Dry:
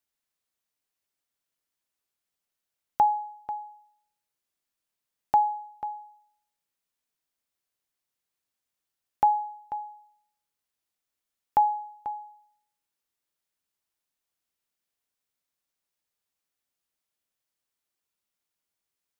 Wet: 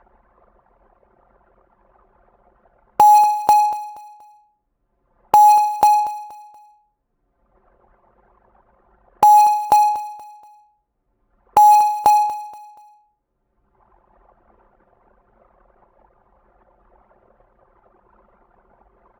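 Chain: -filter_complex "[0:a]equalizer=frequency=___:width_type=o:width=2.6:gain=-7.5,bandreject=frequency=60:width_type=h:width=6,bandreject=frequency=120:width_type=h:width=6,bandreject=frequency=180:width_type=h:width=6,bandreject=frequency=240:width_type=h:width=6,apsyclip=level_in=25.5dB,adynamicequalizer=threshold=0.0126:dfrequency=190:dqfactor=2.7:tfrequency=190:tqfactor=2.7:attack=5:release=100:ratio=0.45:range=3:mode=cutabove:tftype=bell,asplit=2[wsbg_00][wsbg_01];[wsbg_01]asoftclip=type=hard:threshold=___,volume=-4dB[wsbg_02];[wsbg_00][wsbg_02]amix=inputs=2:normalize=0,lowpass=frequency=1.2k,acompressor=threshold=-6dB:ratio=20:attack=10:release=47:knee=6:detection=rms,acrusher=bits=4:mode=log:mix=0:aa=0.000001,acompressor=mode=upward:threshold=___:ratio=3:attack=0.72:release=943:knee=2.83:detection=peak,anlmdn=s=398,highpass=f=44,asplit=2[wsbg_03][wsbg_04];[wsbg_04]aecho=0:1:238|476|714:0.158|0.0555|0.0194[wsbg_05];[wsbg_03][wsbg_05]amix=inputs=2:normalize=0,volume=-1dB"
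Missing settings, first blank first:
110, -16.5dB, -10dB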